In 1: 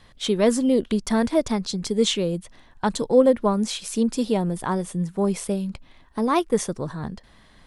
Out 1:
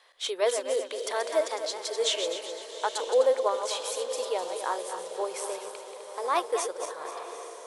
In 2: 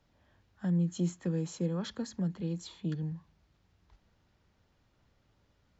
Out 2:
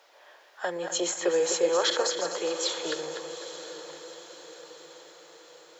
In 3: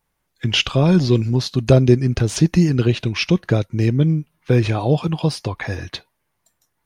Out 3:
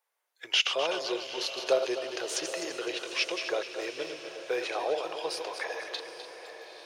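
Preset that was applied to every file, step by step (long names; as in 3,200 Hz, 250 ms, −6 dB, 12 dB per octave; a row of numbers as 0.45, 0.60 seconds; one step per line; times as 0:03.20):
feedback delay that plays each chunk backwards 127 ms, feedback 62%, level −7.5 dB
inverse Chebyshev high-pass filter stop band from 230 Hz, stop band 40 dB
feedback delay with all-pass diffusion 845 ms, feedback 54%, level −12 dB
normalise the peak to −12 dBFS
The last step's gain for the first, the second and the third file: −3.5, +17.5, −7.0 decibels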